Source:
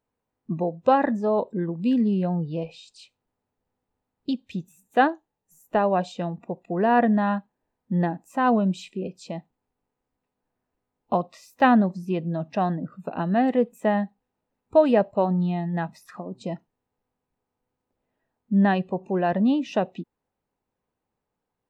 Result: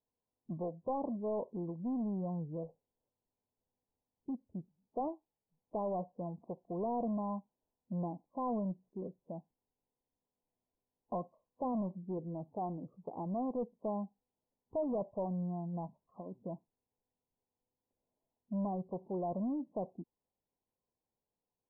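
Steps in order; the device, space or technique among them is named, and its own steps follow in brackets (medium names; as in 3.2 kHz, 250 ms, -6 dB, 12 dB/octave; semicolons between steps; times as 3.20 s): 12.17–13.26 s: comb 2.4 ms, depth 40%; overdriven synthesiser ladder filter (saturation -21 dBFS, distortion -9 dB; four-pole ladder low-pass 1.1 kHz, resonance 85%); inverse Chebyshev low-pass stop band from 1.4 kHz, stop band 40 dB; trim +1.5 dB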